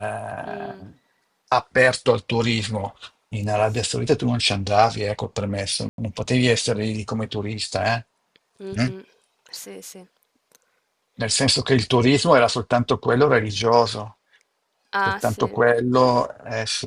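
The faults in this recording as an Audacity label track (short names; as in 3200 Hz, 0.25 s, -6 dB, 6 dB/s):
5.890000	5.980000	gap 92 ms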